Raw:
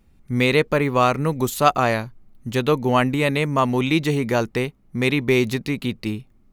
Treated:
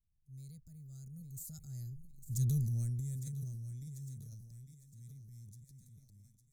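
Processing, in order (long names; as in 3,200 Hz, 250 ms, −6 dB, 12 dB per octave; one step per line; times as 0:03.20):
source passing by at 0:02.45, 24 m/s, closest 4.6 metres
elliptic band-stop filter 140–6,600 Hz, stop band 40 dB
on a send: feedback echo with a high-pass in the loop 855 ms, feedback 47%, high-pass 200 Hz, level −12 dB
on the sum: transient designer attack −4 dB, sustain +7 dB
level −1.5 dB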